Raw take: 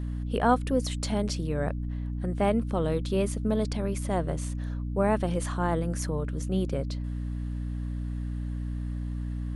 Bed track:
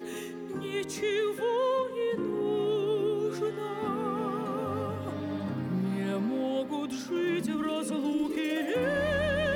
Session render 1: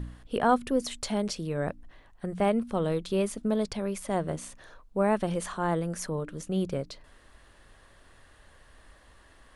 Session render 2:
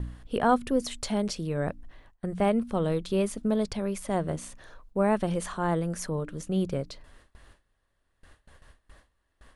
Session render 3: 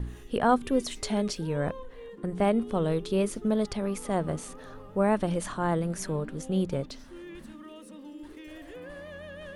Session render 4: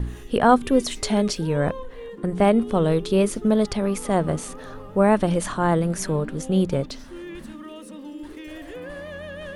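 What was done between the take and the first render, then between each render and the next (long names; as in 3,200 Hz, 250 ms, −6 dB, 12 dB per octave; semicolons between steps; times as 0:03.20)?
hum removal 60 Hz, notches 5
low-shelf EQ 170 Hz +4 dB; noise gate with hold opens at −42 dBFS
mix in bed track −15 dB
level +7 dB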